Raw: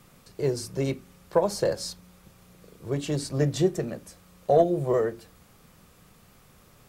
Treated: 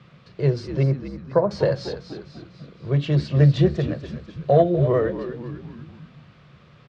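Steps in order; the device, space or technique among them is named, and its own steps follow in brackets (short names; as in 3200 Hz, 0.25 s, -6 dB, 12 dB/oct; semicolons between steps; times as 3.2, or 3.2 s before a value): 0.83–1.51 LPF 1600 Hz 24 dB/oct; frequency-shifting delay pedal into a guitar cabinet (frequency-shifting echo 0.247 s, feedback 53%, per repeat -71 Hz, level -10 dB; speaker cabinet 77–4000 Hz, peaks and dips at 140 Hz +8 dB, 270 Hz -6 dB, 420 Hz -3 dB, 830 Hz -7 dB); gain +5 dB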